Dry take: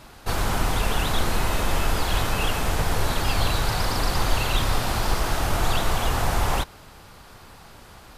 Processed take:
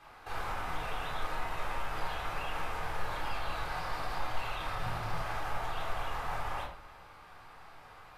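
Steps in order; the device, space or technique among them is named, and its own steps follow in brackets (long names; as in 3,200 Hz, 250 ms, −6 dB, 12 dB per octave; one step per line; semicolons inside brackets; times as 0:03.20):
0:04.75–0:05.17: parametric band 140 Hz +14 dB 0.98 octaves
DJ mixer with the lows and highs turned down (three-way crossover with the lows and the highs turned down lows −14 dB, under 580 Hz, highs −13 dB, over 2,800 Hz; brickwall limiter −27 dBFS, peak gain reduction 10.5 dB)
rectangular room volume 630 cubic metres, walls furnished, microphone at 3.8 metres
level −8 dB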